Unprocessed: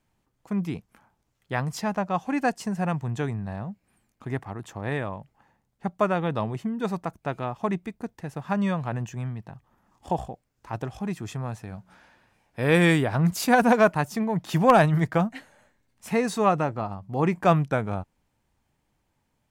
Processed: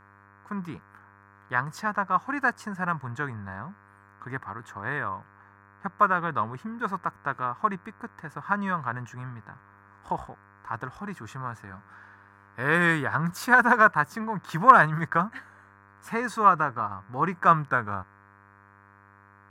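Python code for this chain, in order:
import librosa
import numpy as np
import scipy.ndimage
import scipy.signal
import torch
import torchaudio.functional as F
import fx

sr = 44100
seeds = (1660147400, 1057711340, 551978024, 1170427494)

y = fx.dmg_buzz(x, sr, base_hz=100.0, harmonics=25, level_db=-53.0, tilt_db=-5, odd_only=False)
y = fx.band_shelf(y, sr, hz=1300.0, db=15.0, octaves=1.1)
y = y * 10.0 ** (-7.0 / 20.0)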